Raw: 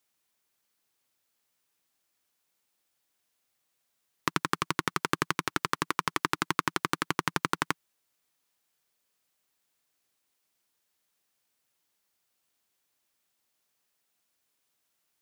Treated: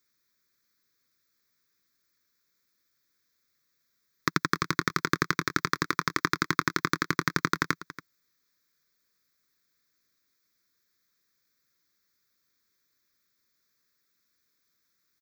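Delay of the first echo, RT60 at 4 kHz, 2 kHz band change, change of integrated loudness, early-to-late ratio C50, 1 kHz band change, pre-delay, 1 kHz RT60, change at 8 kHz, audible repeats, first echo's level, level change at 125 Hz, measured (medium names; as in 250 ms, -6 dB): 281 ms, no reverb, +4.0 dB, +2.5 dB, no reverb, +1.0 dB, no reverb, no reverb, +1.0 dB, 1, -16.0 dB, +4.5 dB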